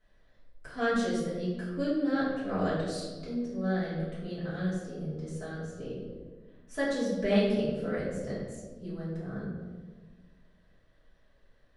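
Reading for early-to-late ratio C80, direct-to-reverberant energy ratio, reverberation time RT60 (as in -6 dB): 2.5 dB, -11.0 dB, 1.4 s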